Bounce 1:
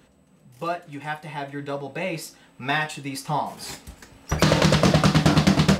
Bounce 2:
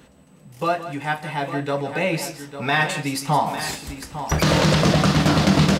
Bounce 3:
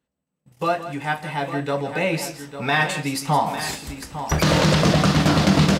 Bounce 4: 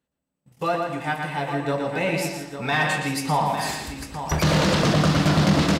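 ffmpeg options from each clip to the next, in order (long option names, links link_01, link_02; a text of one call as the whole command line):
ffmpeg -i in.wav -filter_complex "[0:a]alimiter=limit=-15dB:level=0:latency=1:release=22,asplit=2[link_01][link_02];[link_02]aecho=0:1:165|852:0.237|0.282[link_03];[link_01][link_03]amix=inputs=2:normalize=0,volume=6dB" out.wav
ffmpeg -i in.wav -af "agate=range=-30dB:threshold=-42dB:ratio=16:detection=peak" out.wav
ffmpeg -i in.wav -filter_complex "[0:a]asplit=2[link_01][link_02];[link_02]adelay=117,lowpass=frequency=4600:poles=1,volume=-4dB,asplit=2[link_03][link_04];[link_04]adelay=117,lowpass=frequency=4600:poles=1,volume=0.36,asplit=2[link_05][link_06];[link_06]adelay=117,lowpass=frequency=4600:poles=1,volume=0.36,asplit=2[link_07][link_08];[link_08]adelay=117,lowpass=frequency=4600:poles=1,volume=0.36,asplit=2[link_09][link_10];[link_10]adelay=117,lowpass=frequency=4600:poles=1,volume=0.36[link_11];[link_01][link_03][link_05][link_07][link_09][link_11]amix=inputs=6:normalize=0,asoftclip=type=tanh:threshold=-8.5dB,volume=-2dB" out.wav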